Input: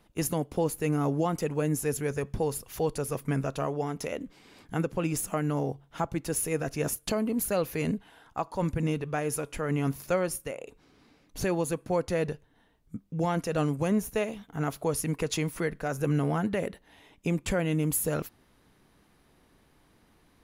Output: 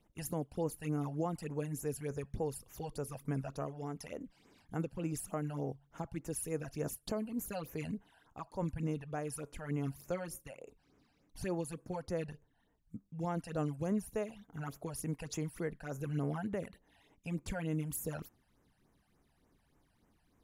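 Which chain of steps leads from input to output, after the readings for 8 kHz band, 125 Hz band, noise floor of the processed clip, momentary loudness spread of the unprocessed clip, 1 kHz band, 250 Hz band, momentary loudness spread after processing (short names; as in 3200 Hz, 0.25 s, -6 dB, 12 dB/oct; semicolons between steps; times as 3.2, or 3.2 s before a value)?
-11.0 dB, -8.0 dB, -74 dBFS, 8 LU, -10.5 dB, -9.0 dB, 10 LU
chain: phaser stages 12, 3.4 Hz, lowest notch 350–4400 Hz; gain -8.5 dB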